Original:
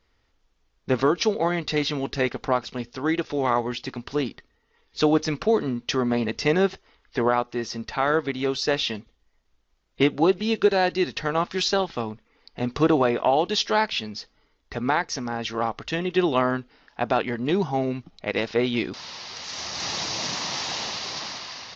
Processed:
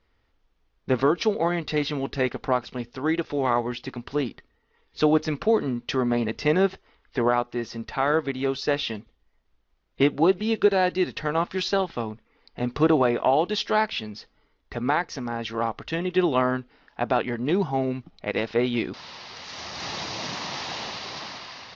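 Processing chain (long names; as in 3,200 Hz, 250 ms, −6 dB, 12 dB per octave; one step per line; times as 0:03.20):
high-frequency loss of the air 140 metres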